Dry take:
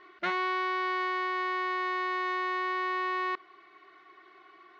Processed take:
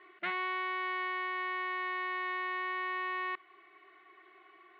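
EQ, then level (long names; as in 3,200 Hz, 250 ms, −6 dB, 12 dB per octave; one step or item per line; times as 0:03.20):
dynamic equaliser 460 Hz, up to −7 dB, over −50 dBFS, Q 1.1
loudspeaker in its box 240–3,100 Hz, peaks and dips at 270 Hz −8 dB, 530 Hz −8 dB, 950 Hz −7 dB, 1,400 Hz −6 dB
0.0 dB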